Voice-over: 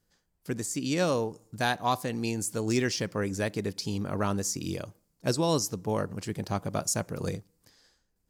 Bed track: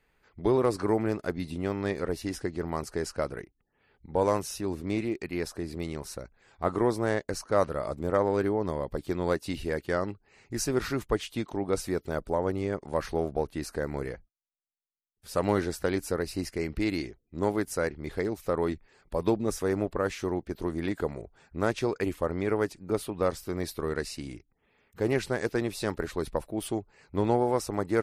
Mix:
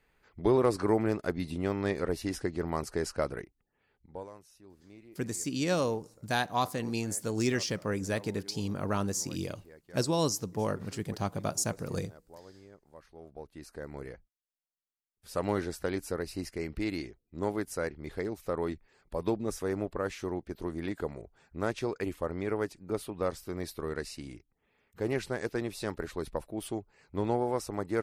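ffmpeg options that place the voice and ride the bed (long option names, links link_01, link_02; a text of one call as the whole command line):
ffmpeg -i stem1.wav -i stem2.wav -filter_complex "[0:a]adelay=4700,volume=-2dB[link_01];[1:a]volume=18.5dB,afade=type=out:start_time=3.39:duration=0.9:silence=0.0707946,afade=type=in:start_time=13.14:duration=1.48:silence=0.112202[link_02];[link_01][link_02]amix=inputs=2:normalize=0" out.wav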